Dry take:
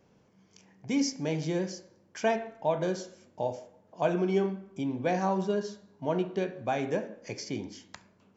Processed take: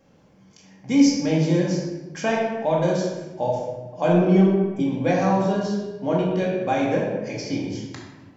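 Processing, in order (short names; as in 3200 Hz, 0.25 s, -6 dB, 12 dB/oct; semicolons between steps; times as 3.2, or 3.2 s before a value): 4.08–4.8 tilt -2 dB/oct; 6.84–7.64 LPF 6000 Hz 12 dB/oct; shoebox room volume 590 m³, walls mixed, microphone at 2.2 m; gain +3 dB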